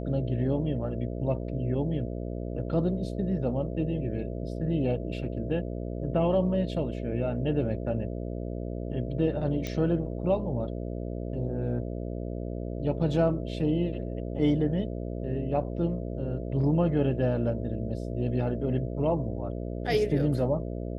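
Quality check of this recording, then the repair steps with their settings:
buzz 60 Hz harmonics 11 -34 dBFS
9.67 s: pop -19 dBFS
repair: de-click; de-hum 60 Hz, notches 11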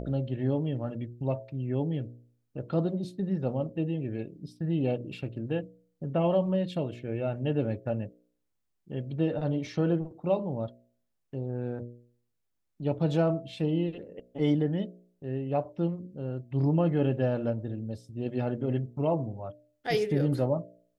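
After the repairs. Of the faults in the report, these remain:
nothing left

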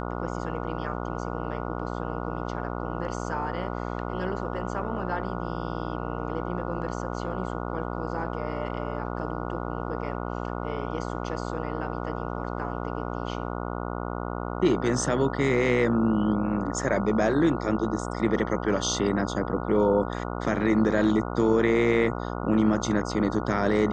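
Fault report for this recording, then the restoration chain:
buzz 60 Hz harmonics 24 -32 dBFS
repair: de-hum 60 Hz, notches 24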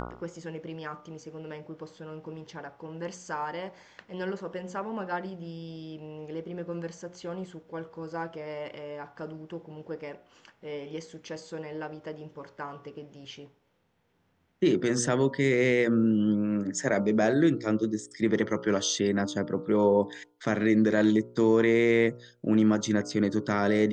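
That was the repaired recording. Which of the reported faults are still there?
nothing left

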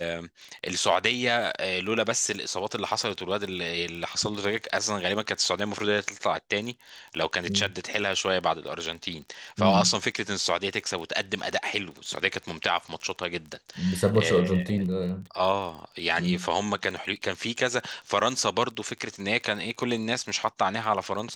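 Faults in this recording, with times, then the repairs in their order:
crackle 24 per s -34 dBFS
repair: de-click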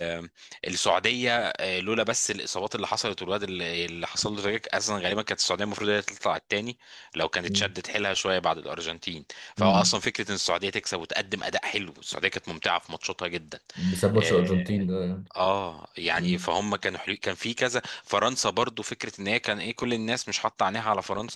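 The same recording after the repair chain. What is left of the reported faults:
nothing left

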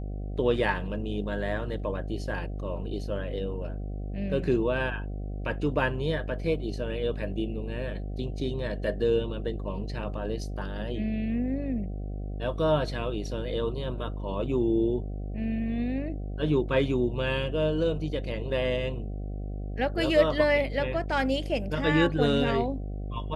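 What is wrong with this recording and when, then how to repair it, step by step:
buzz 50 Hz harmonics 15 -34 dBFS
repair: de-hum 50 Hz, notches 15

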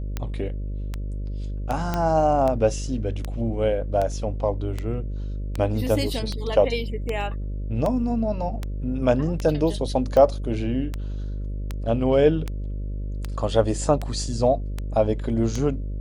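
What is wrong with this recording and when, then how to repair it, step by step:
buzz 50 Hz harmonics 12 -29 dBFS
tick 78 rpm -14 dBFS
1.94 s: pop -11 dBFS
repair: de-click; de-hum 50 Hz, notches 12

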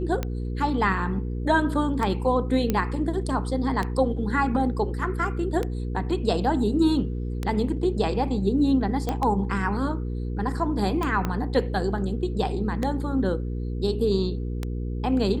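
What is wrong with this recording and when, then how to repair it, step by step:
hum 60 Hz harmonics 8 -29 dBFS
tick 33 1/3 rpm -14 dBFS
2.70 s: pop -10 dBFS
9.09 s: pop -13 dBFS
11.25 s: pop -13 dBFS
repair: de-click; de-hum 60 Hz, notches 8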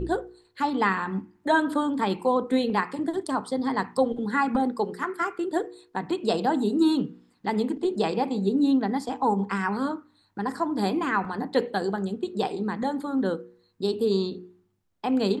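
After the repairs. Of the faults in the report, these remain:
11.25 s: pop

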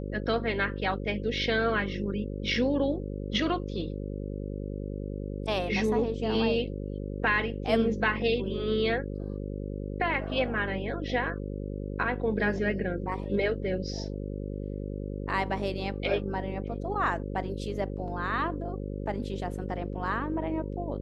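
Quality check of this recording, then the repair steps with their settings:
buzz 50 Hz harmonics 11 -35 dBFS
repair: de-hum 50 Hz, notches 11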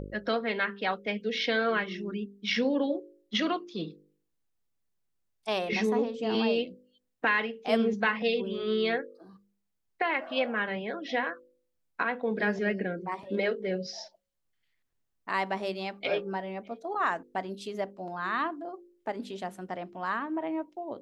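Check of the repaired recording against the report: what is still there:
nothing left

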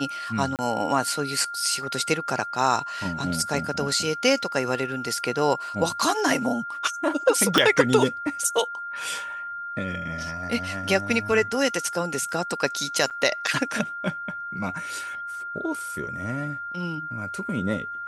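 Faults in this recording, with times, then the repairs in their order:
whine 1.4 kHz -31 dBFS
0.56–0.59 s: dropout 28 ms
7.58 s: pop
13.10–13.11 s: dropout 7.5 ms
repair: de-click; band-stop 1.4 kHz, Q 30; interpolate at 0.56 s, 28 ms; interpolate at 13.10 s, 7.5 ms

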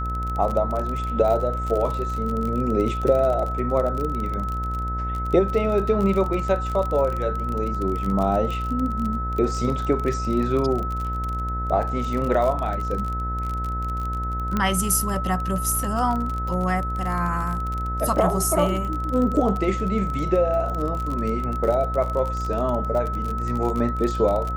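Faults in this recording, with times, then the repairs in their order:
buzz 60 Hz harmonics 34 -28 dBFS
crackle 32 per s -26 dBFS
whine 1.3 kHz -28 dBFS
14.57 s: pop -11 dBFS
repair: de-click; band-stop 1.3 kHz, Q 30; de-hum 60 Hz, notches 34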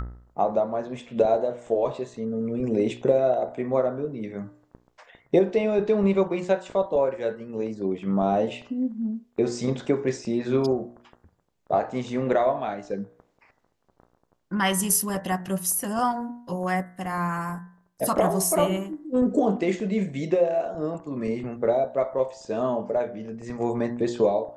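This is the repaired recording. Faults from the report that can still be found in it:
nothing left

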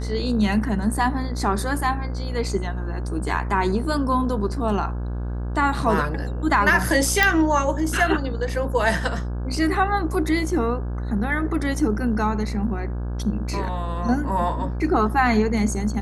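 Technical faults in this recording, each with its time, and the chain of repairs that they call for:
buzz 60 Hz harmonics 28 -27 dBFS
7.23 s: pop -4 dBFS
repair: de-click; de-hum 60 Hz, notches 28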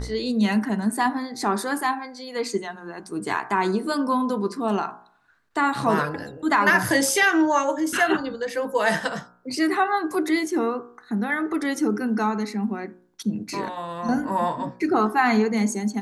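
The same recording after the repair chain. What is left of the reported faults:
nothing left

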